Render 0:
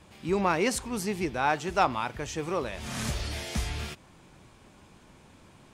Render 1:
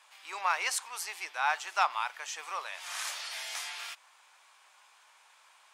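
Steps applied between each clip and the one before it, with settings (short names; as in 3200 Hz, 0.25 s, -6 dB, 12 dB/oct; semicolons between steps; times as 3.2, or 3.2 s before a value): HPF 870 Hz 24 dB/oct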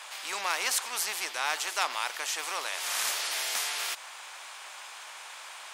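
spectral compressor 2:1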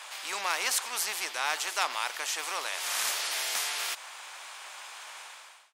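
ending faded out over 0.54 s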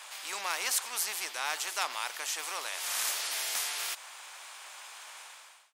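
high shelf 7300 Hz +6 dB; gain -4 dB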